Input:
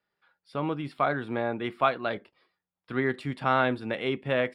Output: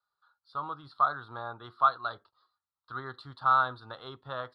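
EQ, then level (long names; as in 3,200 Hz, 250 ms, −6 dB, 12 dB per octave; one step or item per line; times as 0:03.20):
drawn EQ curve 120 Hz 0 dB, 190 Hz −15 dB, 570 Hz −6 dB, 1,300 Hz +14 dB, 2,300 Hz −25 dB, 4,100 Hz +12 dB, 6,100 Hz −9 dB
−8.0 dB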